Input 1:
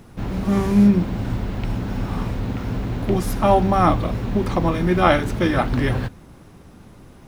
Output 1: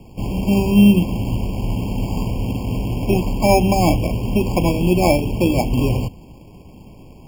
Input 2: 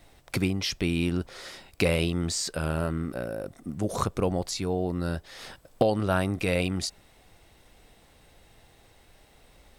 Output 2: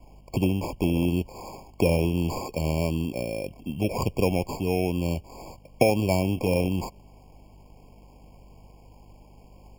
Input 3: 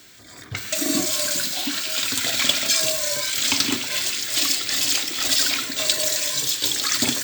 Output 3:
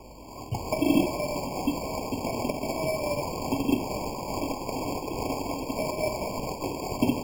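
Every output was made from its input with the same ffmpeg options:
-filter_complex "[0:a]aeval=exprs='val(0)+0.002*(sin(2*PI*50*n/s)+sin(2*PI*2*50*n/s)/2+sin(2*PI*3*50*n/s)/3+sin(2*PI*4*50*n/s)/4+sin(2*PI*5*50*n/s)/5)':c=same,acrossover=split=250|930[s0][s1][s2];[s2]acompressor=threshold=0.0251:ratio=16[s3];[s0][s1][s3]amix=inputs=3:normalize=0,adynamicequalizer=threshold=0.00355:dfrequency=5900:dqfactor=2.5:tfrequency=5900:tqfactor=2.5:attack=5:release=100:ratio=0.375:range=2:mode=boostabove:tftype=bell,acrusher=samples=15:mix=1:aa=0.000001,afftfilt=real='re*eq(mod(floor(b*sr/1024/1100),2),0)':imag='im*eq(mod(floor(b*sr/1024/1100),2),0)':win_size=1024:overlap=0.75,volume=1.41"

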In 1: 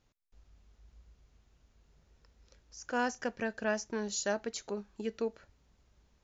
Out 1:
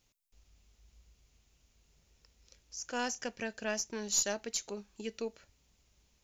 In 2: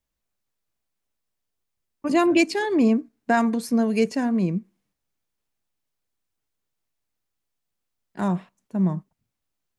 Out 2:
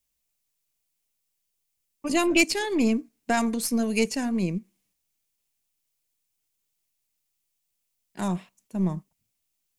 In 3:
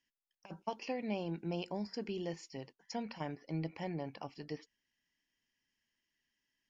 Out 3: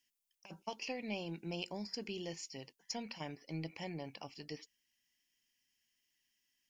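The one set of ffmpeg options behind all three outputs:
-af "aexciter=amount=2.3:drive=6.4:freq=2200,aeval=exprs='0.794*(cos(1*acos(clip(val(0)/0.794,-1,1)))-cos(1*PI/2))+0.0447*(cos(6*acos(clip(val(0)/0.794,-1,1)))-cos(6*PI/2))':c=same,volume=0.631"

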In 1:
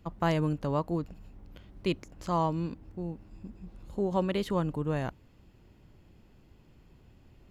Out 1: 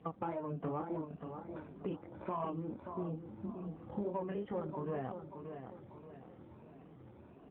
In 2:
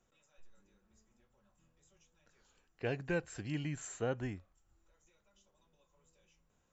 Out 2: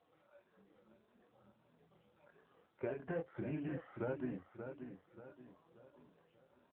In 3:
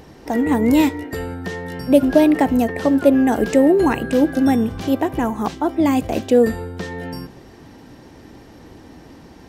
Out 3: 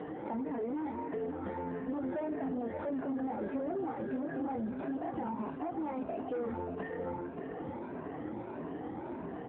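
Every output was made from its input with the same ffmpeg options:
-af "afftfilt=real='re*pow(10,14/40*sin(2*PI*(1.5*log(max(b,1)*sr/1024/100)/log(2)-(1.6)*(pts-256)/sr)))':imag='im*pow(10,14/40*sin(2*PI*(1.5*log(max(b,1)*sr/1024/100)/log(2)-(1.6)*(pts-256)/sr)))':win_size=1024:overlap=0.75,flanger=delay=22.5:depth=3.3:speed=2.4,asoftclip=type=hard:threshold=0.2,lowshelf=f=250:g=-11.5,alimiter=limit=0.0794:level=0:latency=1:release=33,acompressor=threshold=0.00398:ratio=4,lowpass=1200,aecho=1:1:582|1164|1746|2328:0.376|0.147|0.0572|0.0223,asoftclip=type=tanh:threshold=0.0112,volume=3.98" -ar 8000 -c:a libopencore_amrnb -b:a 7400

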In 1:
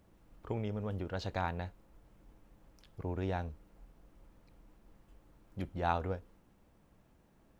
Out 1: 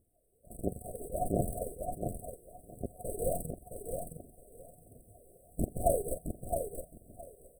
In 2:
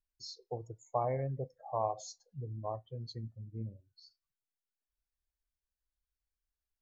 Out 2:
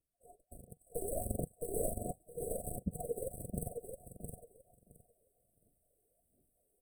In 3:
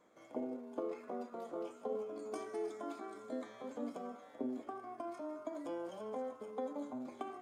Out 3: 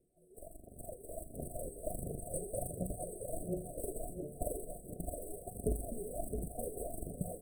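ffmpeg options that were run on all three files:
-filter_complex "[0:a]afftfilt=real='real(if(lt(b,272),68*(eq(floor(b/68),0)*2+eq(floor(b/68),1)*3+eq(floor(b/68),2)*0+eq(floor(b/68),3)*1)+mod(b,68),b),0)':imag='imag(if(lt(b,272),68*(eq(floor(b/68),0)*2+eq(floor(b/68),1)*3+eq(floor(b/68),2)*0+eq(floor(b/68),3)*1)+mod(b,68),b),0)':win_size=2048:overlap=0.75,adynamicequalizer=threshold=0.00355:dfrequency=3100:dqfactor=4.2:tfrequency=3100:tqfactor=4.2:attack=5:release=100:ratio=0.375:range=3:mode=boostabove:tftype=bell,aphaser=in_gain=1:out_gain=1:delay=2.6:decay=0.76:speed=1.4:type=triangular,afftfilt=real='re*(1-between(b*sr/4096,740,7900))':imag='im*(1-between(b*sr/4096,740,7900))':win_size=4096:overlap=0.75,acontrast=59,aemphasis=mode=reproduction:type=50kf,asplit=2[s0][s1];[s1]aecho=0:1:666|1332|1998:0.501|0.0852|0.0145[s2];[s0][s2]amix=inputs=2:normalize=0,dynaudnorm=f=440:g=5:m=4.22,volume=2"

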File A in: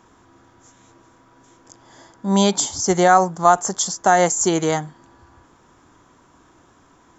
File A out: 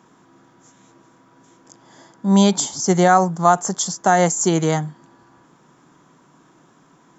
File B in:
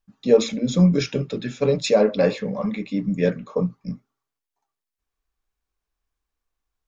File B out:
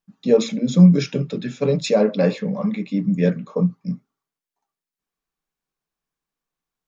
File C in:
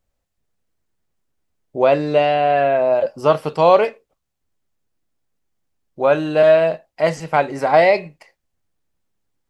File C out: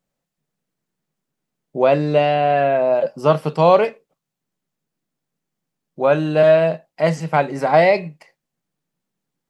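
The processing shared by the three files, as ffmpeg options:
-af "lowshelf=f=110:t=q:w=3:g=-11.5,volume=0.891"

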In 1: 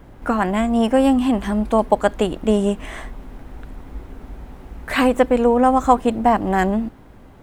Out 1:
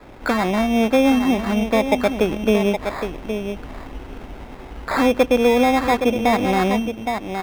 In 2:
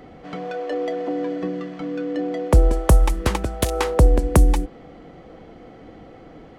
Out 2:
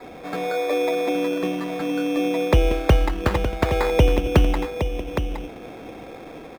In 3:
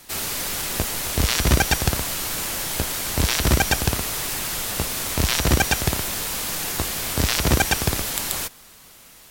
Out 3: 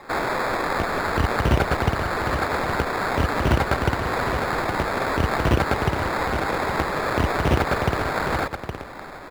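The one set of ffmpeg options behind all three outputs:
-filter_complex "[0:a]asplit=2[s0][s1];[s1]adelay=816.3,volume=0.316,highshelf=f=4000:g=-18.4[s2];[s0][s2]amix=inputs=2:normalize=0,adynamicequalizer=threshold=0.02:dfrequency=100:dqfactor=0.75:tfrequency=100:tqfactor=0.75:attack=5:release=100:ratio=0.375:range=4:mode=boostabove:tftype=bell,acrossover=split=540|5800[s3][s4][s5];[s4]asoftclip=type=tanh:threshold=0.112[s6];[s3][s6][s5]amix=inputs=3:normalize=0,acrusher=samples=15:mix=1:aa=0.000001,asplit=2[s7][s8];[s8]acompressor=threshold=0.0447:ratio=6,volume=1.12[s9];[s7][s9]amix=inputs=2:normalize=0,bass=f=250:g=-9,treble=f=4000:g=-12"

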